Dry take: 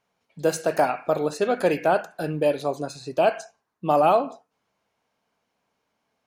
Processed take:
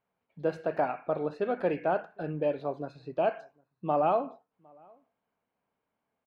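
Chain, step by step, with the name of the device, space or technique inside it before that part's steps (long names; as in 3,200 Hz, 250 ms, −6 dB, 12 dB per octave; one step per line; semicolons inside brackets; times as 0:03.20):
shout across a valley (high-frequency loss of the air 400 metres; slap from a distant wall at 130 metres, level −29 dB)
level −6 dB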